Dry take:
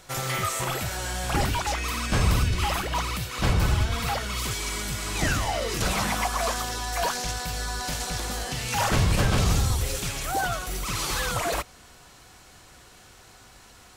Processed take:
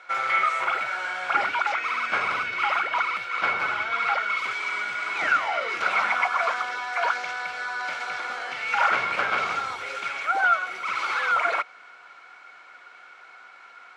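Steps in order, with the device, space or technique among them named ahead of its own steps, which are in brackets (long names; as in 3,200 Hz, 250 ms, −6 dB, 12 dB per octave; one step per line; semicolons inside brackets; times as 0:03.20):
tin-can telephone (band-pass filter 700–2,400 Hz; hollow resonant body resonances 1,400/2,200 Hz, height 15 dB, ringing for 30 ms)
level +2.5 dB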